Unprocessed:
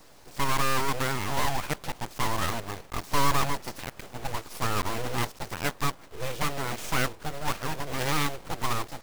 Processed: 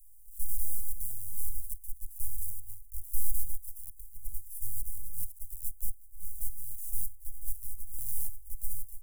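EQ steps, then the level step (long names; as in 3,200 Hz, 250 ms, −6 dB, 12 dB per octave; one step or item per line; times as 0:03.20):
inverse Chebyshev band-stop filter 330–2,300 Hz, stop band 80 dB
Butterworth band-reject 2,200 Hz, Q 0.67
phaser with its sweep stopped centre 350 Hz, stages 8
+4.0 dB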